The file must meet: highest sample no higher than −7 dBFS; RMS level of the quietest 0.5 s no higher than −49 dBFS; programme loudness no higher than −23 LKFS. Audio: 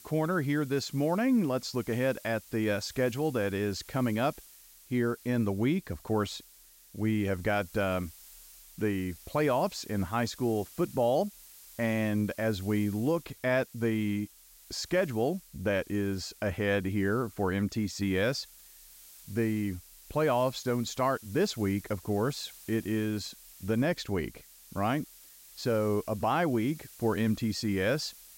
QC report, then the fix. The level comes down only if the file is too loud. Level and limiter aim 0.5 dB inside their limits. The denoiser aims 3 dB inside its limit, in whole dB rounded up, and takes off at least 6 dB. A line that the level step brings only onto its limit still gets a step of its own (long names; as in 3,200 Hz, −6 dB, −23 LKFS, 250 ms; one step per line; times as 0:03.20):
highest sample −17.5 dBFS: in spec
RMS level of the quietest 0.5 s −57 dBFS: in spec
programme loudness −30.5 LKFS: in spec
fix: no processing needed